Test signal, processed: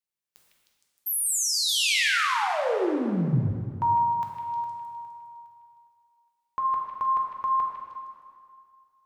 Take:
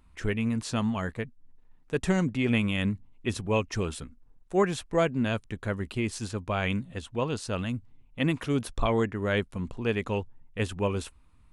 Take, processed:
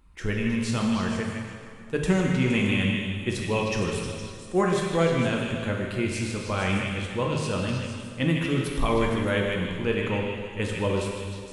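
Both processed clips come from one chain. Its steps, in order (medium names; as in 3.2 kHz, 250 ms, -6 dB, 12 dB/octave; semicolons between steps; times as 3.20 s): band-stop 690 Hz, Q 12; repeats whose band climbs or falls 155 ms, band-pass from 2.6 kHz, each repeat 0.7 oct, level -2.5 dB; plate-style reverb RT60 2.2 s, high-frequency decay 0.8×, DRR -0.5 dB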